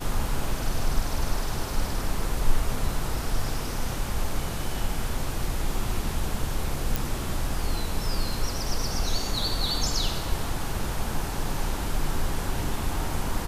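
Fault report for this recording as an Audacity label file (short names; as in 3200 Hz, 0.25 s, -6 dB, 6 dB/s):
6.960000	6.960000	pop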